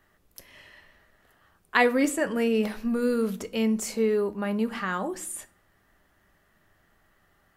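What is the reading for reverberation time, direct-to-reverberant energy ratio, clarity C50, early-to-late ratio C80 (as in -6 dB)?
0.50 s, 9.5 dB, 19.0 dB, 23.5 dB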